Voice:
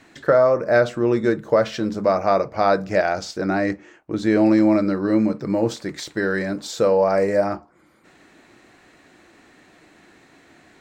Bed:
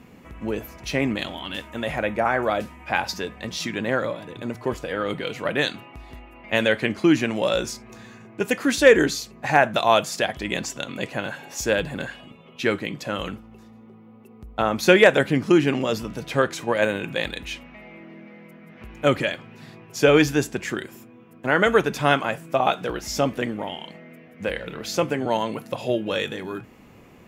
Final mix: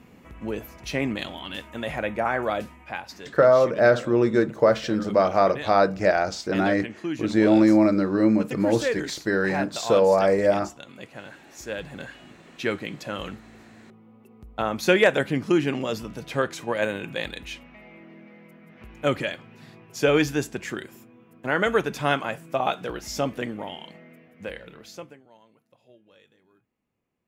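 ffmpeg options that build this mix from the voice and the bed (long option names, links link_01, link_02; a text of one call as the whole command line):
ffmpeg -i stem1.wav -i stem2.wav -filter_complex "[0:a]adelay=3100,volume=-1dB[link_01];[1:a]volume=5.5dB,afade=type=out:start_time=2.68:duration=0.33:silence=0.334965,afade=type=in:start_time=11.63:duration=0.75:silence=0.375837,afade=type=out:start_time=24.01:duration=1.22:silence=0.0421697[link_02];[link_01][link_02]amix=inputs=2:normalize=0" out.wav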